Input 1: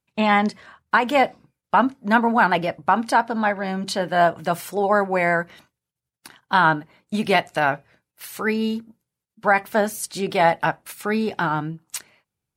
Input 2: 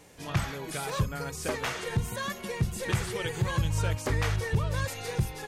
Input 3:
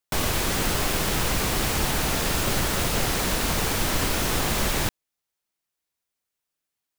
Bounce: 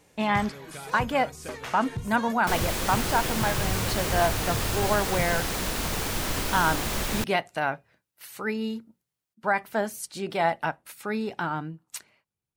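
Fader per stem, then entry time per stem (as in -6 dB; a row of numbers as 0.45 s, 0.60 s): -7.0 dB, -5.5 dB, -4.5 dB; 0.00 s, 0.00 s, 2.35 s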